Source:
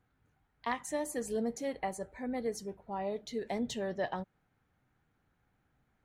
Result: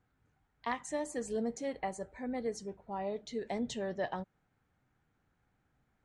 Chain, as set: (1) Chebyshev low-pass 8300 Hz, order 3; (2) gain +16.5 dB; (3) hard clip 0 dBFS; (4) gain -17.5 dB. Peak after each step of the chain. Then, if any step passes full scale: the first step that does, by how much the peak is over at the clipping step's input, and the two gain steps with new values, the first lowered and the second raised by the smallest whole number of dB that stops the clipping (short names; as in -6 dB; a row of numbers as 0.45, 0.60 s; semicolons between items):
-20.5, -4.0, -4.0, -21.5 dBFS; no overload